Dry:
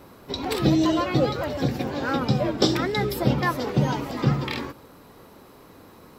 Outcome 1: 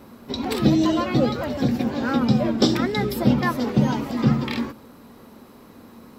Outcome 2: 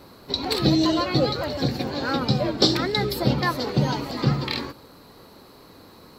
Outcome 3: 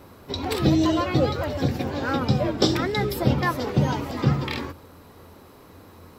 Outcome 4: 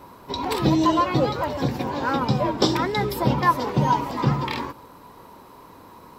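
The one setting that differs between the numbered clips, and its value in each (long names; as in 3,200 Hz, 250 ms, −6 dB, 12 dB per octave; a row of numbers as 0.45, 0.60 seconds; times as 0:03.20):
parametric band, centre frequency: 230, 4,300, 86, 970 Hertz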